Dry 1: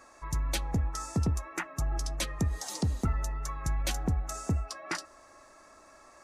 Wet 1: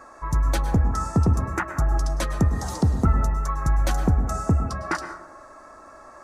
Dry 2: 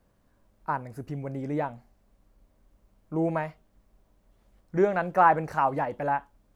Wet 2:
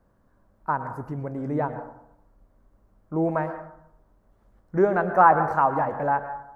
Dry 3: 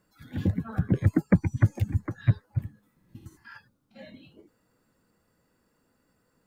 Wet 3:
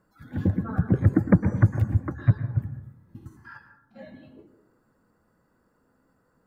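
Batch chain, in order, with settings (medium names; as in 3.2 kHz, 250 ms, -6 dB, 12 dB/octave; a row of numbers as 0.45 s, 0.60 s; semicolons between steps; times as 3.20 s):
resonant high shelf 1.9 kHz -8 dB, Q 1.5; plate-style reverb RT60 0.76 s, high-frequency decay 0.4×, pre-delay 95 ms, DRR 9.5 dB; normalise loudness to -24 LUFS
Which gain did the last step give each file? +9.0 dB, +2.5 dB, +2.5 dB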